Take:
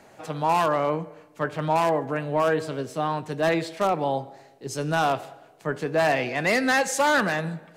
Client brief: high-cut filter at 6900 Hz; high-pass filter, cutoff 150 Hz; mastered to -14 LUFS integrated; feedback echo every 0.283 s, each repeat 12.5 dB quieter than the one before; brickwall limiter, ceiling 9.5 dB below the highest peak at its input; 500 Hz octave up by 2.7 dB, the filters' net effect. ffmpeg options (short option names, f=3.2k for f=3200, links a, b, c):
-af "highpass=150,lowpass=6.9k,equalizer=f=500:t=o:g=3.5,alimiter=limit=-19dB:level=0:latency=1,aecho=1:1:283|566|849:0.237|0.0569|0.0137,volume=15dB"